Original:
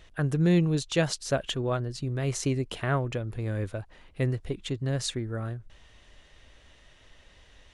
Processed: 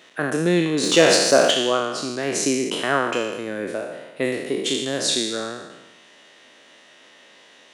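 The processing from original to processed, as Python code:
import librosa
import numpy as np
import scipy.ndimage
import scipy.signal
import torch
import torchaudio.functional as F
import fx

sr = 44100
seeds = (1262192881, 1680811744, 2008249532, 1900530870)

y = fx.spec_trails(x, sr, decay_s=1.12)
y = scipy.signal.sosfilt(scipy.signal.butter(4, 220.0, 'highpass', fs=sr, output='sos'), y)
y = fx.leveller(y, sr, passes=1, at=(0.83, 1.51))
y = fx.high_shelf(y, sr, hz=fx.line((4.24, 6300.0), (4.99, 4300.0)), db=9.0, at=(4.24, 4.99), fade=0.02)
y = y * librosa.db_to_amplitude(6.5)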